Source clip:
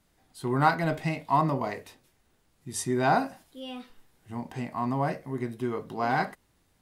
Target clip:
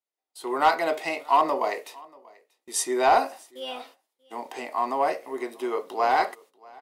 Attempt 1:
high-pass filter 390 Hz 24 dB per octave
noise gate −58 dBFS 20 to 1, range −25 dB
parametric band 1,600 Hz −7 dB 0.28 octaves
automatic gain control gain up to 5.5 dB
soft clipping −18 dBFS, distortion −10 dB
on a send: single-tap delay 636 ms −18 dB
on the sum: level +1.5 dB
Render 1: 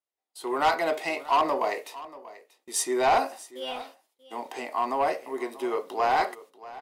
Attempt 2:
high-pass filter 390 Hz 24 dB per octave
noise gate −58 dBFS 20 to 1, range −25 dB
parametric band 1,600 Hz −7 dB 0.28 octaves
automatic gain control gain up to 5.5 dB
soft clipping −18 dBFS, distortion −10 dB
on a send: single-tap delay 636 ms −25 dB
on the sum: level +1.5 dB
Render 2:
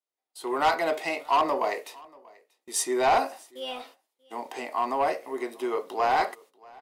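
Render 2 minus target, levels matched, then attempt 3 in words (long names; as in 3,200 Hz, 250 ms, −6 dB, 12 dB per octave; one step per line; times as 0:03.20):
soft clipping: distortion +6 dB
high-pass filter 390 Hz 24 dB per octave
noise gate −58 dBFS 20 to 1, range −25 dB
parametric band 1,600 Hz −7 dB 0.28 octaves
automatic gain control gain up to 5.5 dB
soft clipping −12 dBFS, distortion −17 dB
on a send: single-tap delay 636 ms −25 dB
on the sum: level +1.5 dB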